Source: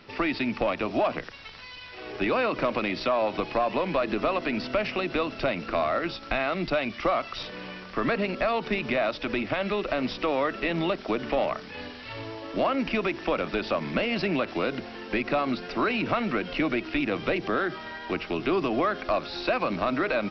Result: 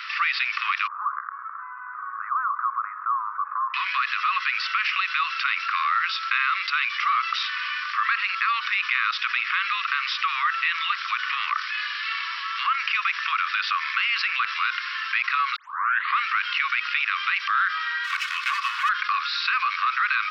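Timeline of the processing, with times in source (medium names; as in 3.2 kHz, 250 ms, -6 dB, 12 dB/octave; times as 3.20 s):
0.87–3.74 s: steep low-pass 1.3 kHz 48 dB/octave
15.56 s: tape start 0.63 s
18.04–18.89 s: comb filter that takes the minimum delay 2.7 ms
whole clip: steep high-pass 1.1 kHz 96 dB/octave; treble shelf 3 kHz -10 dB; level flattener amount 50%; trim +8.5 dB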